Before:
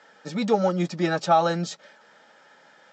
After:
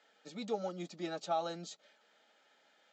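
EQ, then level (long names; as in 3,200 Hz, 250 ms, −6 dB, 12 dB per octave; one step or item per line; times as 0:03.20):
loudspeaker in its box 370–7,400 Hz, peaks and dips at 370 Hz −4 dB, 530 Hz −7 dB, 930 Hz −6 dB, 1,700 Hz −6 dB, 5,400 Hz −8 dB
parametric band 1,200 Hz −7 dB 1.4 octaves
dynamic equaliser 2,400 Hz, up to −5 dB, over −52 dBFS, Q 1
−7.0 dB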